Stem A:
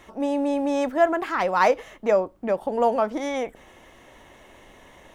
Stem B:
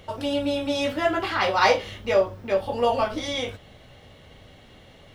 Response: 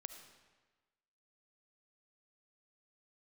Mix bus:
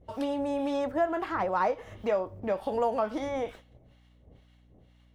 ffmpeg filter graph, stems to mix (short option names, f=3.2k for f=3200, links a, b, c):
-filter_complex "[0:a]agate=range=-31dB:threshold=-42dB:ratio=16:detection=peak,volume=-4dB,asplit=2[a][b];[b]volume=-22.5dB[c];[1:a]acrossover=split=730[d][e];[d]aeval=exprs='val(0)*(1-1/2+1/2*cos(2*PI*2.1*n/s))':c=same[f];[e]aeval=exprs='val(0)*(1-1/2-1/2*cos(2*PI*2.1*n/s))':c=same[g];[f][g]amix=inputs=2:normalize=0,acompressor=threshold=-35dB:ratio=6,agate=range=-33dB:threshold=-45dB:ratio=3:detection=peak,volume=-1,volume=-0.5dB[h];[2:a]atrim=start_sample=2205[i];[c][i]afir=irnorm=-1:irlink=0[j];[a][h][j]amix=inputs=3:normalize=0,acrossover=split=760|1600[k][l][m];[k]acompressor=threshold=-28dB:ratio=4[n];[l]acompressor=threshold=-29dB:ratio=4[o];[m]acompressor=threshold=-49dB:ratio=4[p];[n][o][p]amix=inputs=3:normalize=0,aeval=exprs='val(0)+0.00112*(sin(2*PI*60*n/s)+sin(2*PI*2*60*n/s)/2+sin(2*PI*3*60*n/s)/3+sin(2*PI*4*60*n/s)/4+sin(2*PI*5*60*n/s)/5)':c=same"